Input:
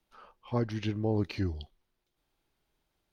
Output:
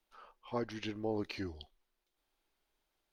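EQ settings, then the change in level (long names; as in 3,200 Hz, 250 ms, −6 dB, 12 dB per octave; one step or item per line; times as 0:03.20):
parametric band 110 Hz −13.5 dB 2 octaves
−2.0 dB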